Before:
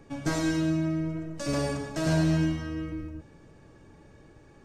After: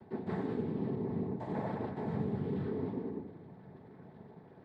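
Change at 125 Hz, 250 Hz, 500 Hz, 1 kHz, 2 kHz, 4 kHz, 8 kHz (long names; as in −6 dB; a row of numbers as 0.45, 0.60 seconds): −9.5 dB, −8.0 dB, −4.5 dB, −4.5 dB, −16.0 dB, below −20 dB, below −35 dB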